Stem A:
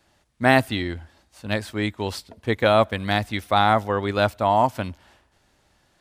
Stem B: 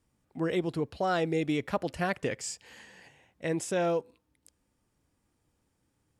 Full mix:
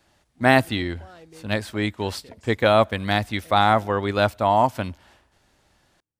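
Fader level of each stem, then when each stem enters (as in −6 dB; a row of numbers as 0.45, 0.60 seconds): +0.5, −18.5 decibels; 0.00, 0.00 seconds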